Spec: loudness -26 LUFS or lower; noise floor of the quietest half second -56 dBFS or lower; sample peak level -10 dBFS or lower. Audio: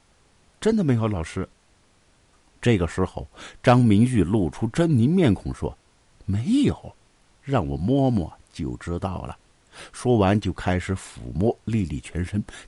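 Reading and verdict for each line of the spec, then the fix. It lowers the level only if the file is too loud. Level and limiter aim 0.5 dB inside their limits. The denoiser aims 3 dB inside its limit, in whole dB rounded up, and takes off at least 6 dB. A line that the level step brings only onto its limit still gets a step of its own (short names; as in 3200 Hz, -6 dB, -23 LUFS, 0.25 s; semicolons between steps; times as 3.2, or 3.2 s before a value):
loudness -23.0 LUFS: fail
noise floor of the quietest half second -60 dBFS: OK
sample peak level -7.0 dBFS: fail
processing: gain -3.5 dB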